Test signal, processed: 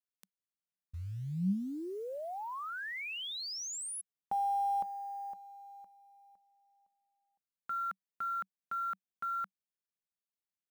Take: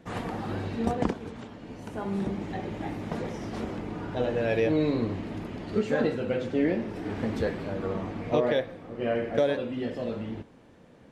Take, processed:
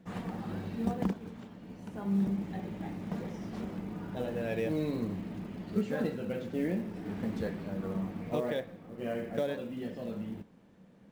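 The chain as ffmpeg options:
ffmpeg -i in.wav -af "acrusher=bits=7:mode=log:mix=0:aa=0.000001,equalizer=frequency=190:width_type=o:width=0.36:gain=12.5,volume=-8.5dB" out.wav

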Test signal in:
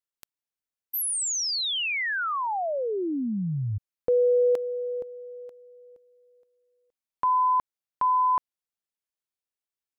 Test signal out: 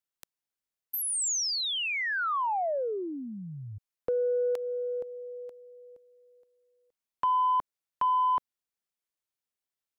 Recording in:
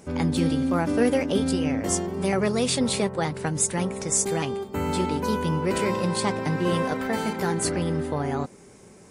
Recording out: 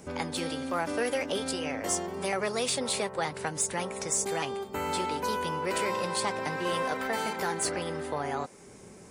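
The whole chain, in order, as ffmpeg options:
ffmpeg -i in.wav -filter_complex "[0:a]acrossover=split=450|1100|7600[link_01][link_02][link_03][link_04];[link_01]acompressor=threshold=-42dB:ratio=4[link_05];[link_02]acompressor=threshold=-28dB:ratio=4[link_06];[link_03]acompressor=threshold=-30dB:ratio=4[link_07];[link_04]acompressor=threshold=-32dB:ratio=4[link_08];[link_05][link_06][link_07][link_08]amix=inputs=4:normalize=0,asoftclip=type=tanh:threshold=-17dB" out.wav

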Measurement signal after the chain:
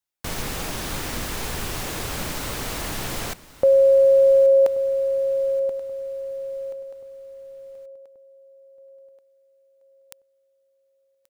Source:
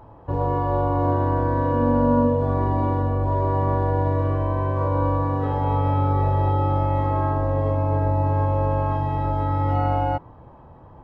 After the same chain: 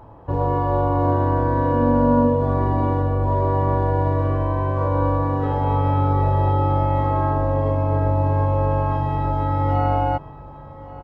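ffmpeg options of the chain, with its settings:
ffmpeg -i in.wav -af "aecho=1:1:1131|2262|3393|4524:0.112|0.0572|0.0292|0.0149,volume=2dB" out.wav

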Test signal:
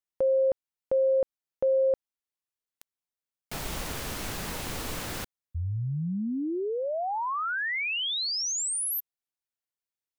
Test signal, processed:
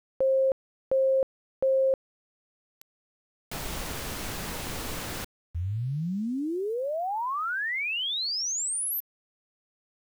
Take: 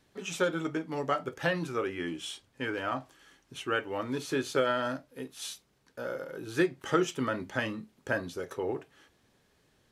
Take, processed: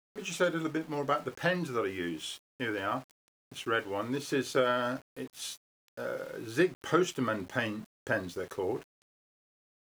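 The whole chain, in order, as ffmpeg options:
ffmpeg -i in.wav -af "aeval=exprs='val(0)*gte(abs(val(0)),0.00376)':channel_layout=same" out.wav

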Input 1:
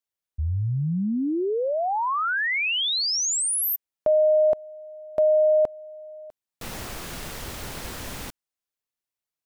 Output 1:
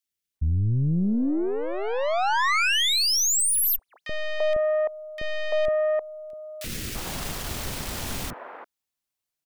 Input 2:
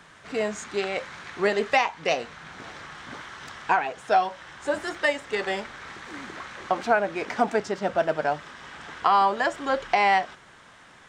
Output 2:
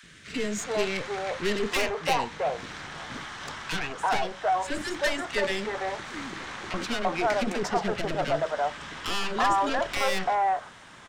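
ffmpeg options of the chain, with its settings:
ffmpeg -i in.wav -filter_complex "[0:a]aeval=exprs='(tanh(17.8*val(0)+0.45)-tanh(0.45))/17.8':channel_layout=same,acrossover=split=450|1600[link_01][link_02][link_03];[link_01]adelay=30[link_04];[link_02]adelay=340[link_05];[link_04][link_05][link_03]amix=inputs=3:normalize=0,volume=6dB" out.wav

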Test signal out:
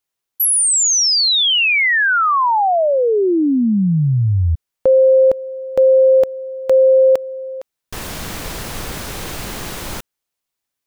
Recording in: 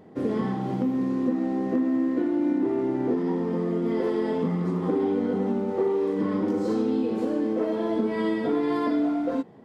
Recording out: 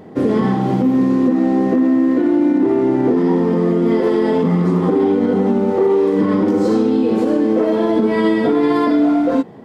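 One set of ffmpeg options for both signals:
ffmpeg -i in.wav -af "alimiter=level_in=17.5dB:limit=-1dB:release=50:level=0:latency=1,volume=-6dB" out.wav

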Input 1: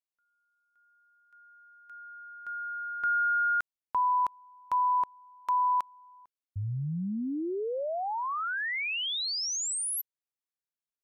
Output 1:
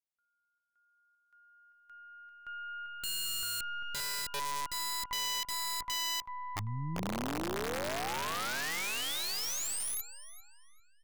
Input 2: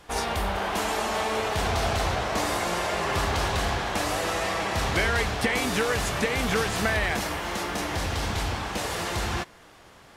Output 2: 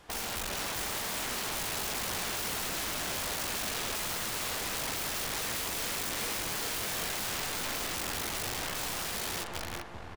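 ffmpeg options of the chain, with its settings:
ffmpeg -i in.wav -filter_complex "[0:a]aeval=exprs='0.299*(cos(1*acos(clip(val(0)/0.299,-1,1)))-cos(1*PI/2))+0.00237*(cos(3*acos(clip(val(0)/0.299,-1,1)))-cos(3*PI/2))+0.00376*(cos(5*acos(clip(val(0)/0.299,-1,1)))-cos(5*PI/2))+0.0473*(cos(6*acos(clip(val(0)/0.299,-1,1)))-cos(6*PI/2))+0.00841*(cos(7*acos(clip(val(0)/0.299,-1,1)))-cos(7*PI/2))':channel_layout=same,asplit=2[link_01][link_02];[link_02]adelay=394,lowpass=frequency=3100:poles=1,volume=-7dB,asplit=2[link_03][link_04];[link_04]adelay=394,lowpass=frequency=3100:poles=1,volume=0.51,asplit=2[link_05][link_06];[link_06]adelay=394,lowpass=frequency=3100:poles=1,volume=0.51,asplit=2[link_07][link_08];[link_08]adelay=394,lowpass=frequency=3100:poles=1,volume=0.51,asplit=2[link_09][link_10];[link_10]adelay=394,lowpass=frequency=3100:poles=1,volume=0.51,asplit=2[link_11][link_12];[link_12]adelay=394,lowpass=frequency=3100:poles=1,volume=0.51[link_13];[link_01][link_03][link_05][link_07][link_09][link_11][link_13]amix=inputs=7:normalize=0,aeval=exprs='(mod(17.8*val(0)+1,2)-1)/17.8':channel_layout=same,volume=-3.5dB" out.wav

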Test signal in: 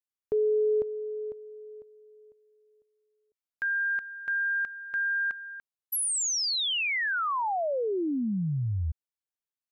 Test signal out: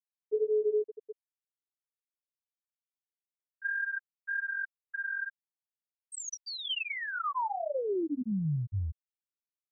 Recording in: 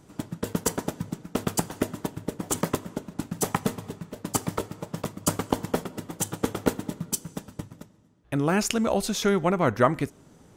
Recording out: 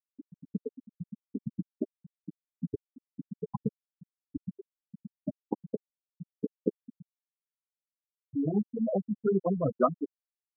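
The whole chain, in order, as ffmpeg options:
ffmpeg -i in.wav -af "flanger=delay=9.5:depth=5.3:regen=-8:speed=1.8:shape=sinusoidal,afftfilt=real='re*gte(hypot(re,im),0.251)':imag='im*gte(hypot(re,im),0.251)':win_size=1024:overlap=0.75" out.wav

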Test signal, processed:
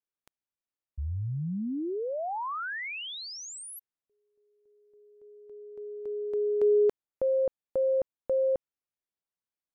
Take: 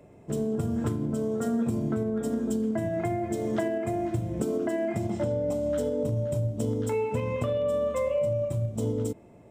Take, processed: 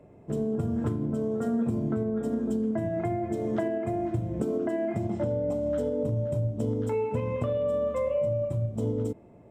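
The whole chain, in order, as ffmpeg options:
ffmpeg -i in.wav -af "highshelf=frequency=2700:gain=-11.5" out.wav

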